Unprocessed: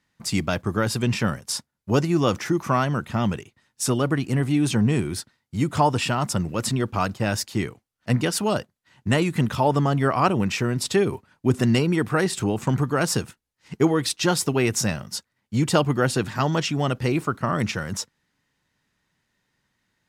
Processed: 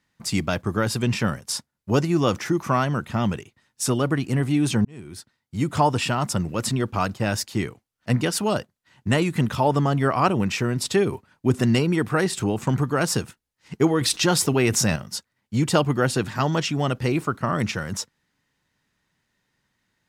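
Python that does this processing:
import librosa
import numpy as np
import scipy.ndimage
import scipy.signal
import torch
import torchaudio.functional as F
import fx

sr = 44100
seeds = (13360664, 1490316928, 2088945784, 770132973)

y = fx.env_flatten(x, sr, amount_pct=50, at=(14.01, 14.96))
y = fx.edit(y, sr, fx.fade_in_span(start_s=4.85, length_s=0.86), tone=tone)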